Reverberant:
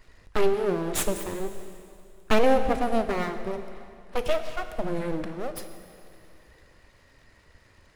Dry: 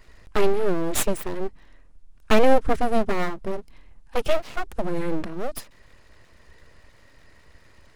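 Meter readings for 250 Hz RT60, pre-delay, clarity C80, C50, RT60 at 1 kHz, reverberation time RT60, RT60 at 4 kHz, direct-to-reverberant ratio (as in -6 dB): 2.5 s, 5 ms, 10.0 dB, 9.0 dB, 2.5 s, 2.5 s, 2.3 s, 8.0 dB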